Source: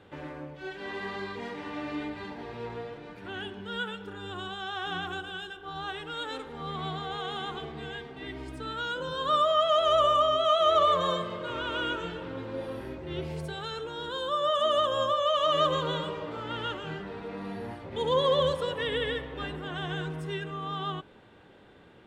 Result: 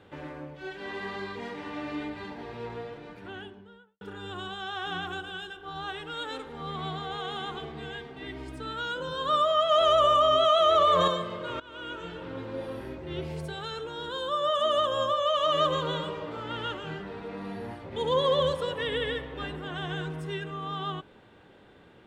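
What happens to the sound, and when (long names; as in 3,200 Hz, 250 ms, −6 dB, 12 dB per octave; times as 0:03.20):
0:03.05–0:04.01: fade out and dull
0:09.71–0:11.08: envelope flattener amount 70%
0:11.60–0:12.35: fade in, from −20 dB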